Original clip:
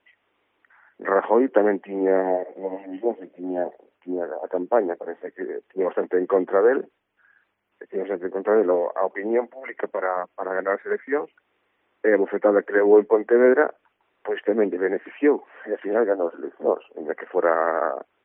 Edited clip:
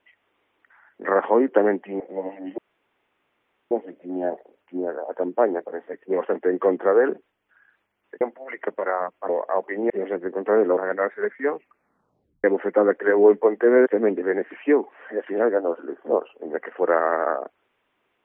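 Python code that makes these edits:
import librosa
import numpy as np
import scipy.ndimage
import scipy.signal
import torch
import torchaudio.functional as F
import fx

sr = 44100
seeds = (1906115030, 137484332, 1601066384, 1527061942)

y = fx.edit(x, sr, fx.cut(start_s=2.0, length_s=0.47),
    fx.insert_room_tone(at_s=3.05, length_s=1.13),
    fx.cut(start_s=5.37, length_s=0.34),
    fx.swap(start_s=7.89, length_s=0.87, other_s=9.37, other_length_s=1.08),
    fx.tape_stop(start_s=11.23, length_s=0.89),
    fx.cut(start_s=13.55, length_s=0.87), tone=tone)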